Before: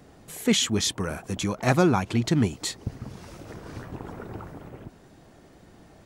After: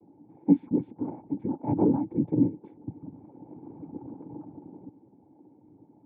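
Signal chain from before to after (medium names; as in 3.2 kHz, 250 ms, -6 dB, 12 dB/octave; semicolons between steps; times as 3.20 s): noise-vocoded speech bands 8; cascade formant filter u; trim +6.5 dB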